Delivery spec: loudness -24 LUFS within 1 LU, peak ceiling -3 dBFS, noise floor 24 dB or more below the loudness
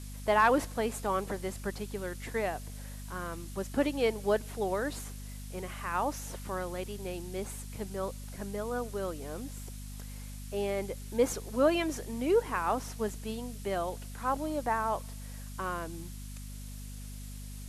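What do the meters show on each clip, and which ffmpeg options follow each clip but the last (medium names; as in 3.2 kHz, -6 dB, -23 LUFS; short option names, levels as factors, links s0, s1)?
hum 50 Hz; highest harmonic 250 Hz; hum level -40 dBFS; noise floor -43 dBFS; noise floor target -57 dBFS; loudness -33.0 LUFS; peak level -13.0 dBFS; loudness target -24.0 LUFS
-> -af "bandreject=f=50:t=h:w=4,bandreject=f=100:t=h:w=4,bandreject=f=150:t=h:w=4,bandreject=f=200:t=h:w=4,bandreject=f=250:t=h:w=4"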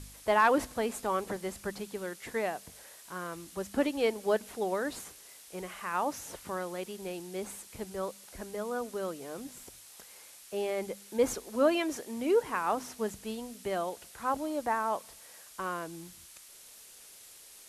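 hum not found; noise floor -53 dBFS; noise floor target -58 dBFS
-> -af "afftdn=nr=6:nf=-53"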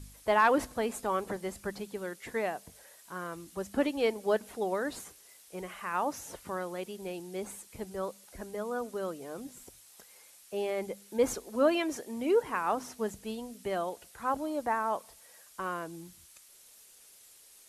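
noise floor -57 dBFS; noise floor target -58 dBFS
-> -af "afftdn=nr=6:nf=-57"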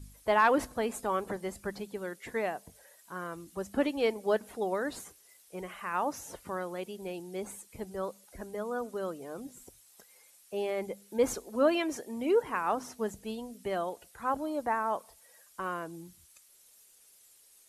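noise floor -61 dBFS; loudness -33.5 LUFS; peak level -13.5 dBFS; loudness target -24.0 LUFS
-> -af "volume=2.99"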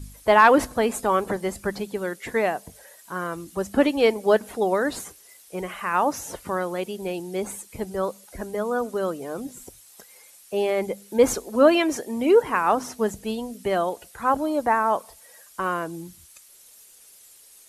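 loudness -24.0 LUFS; peak level -4.0 dBFS; noise floor -51 dBFS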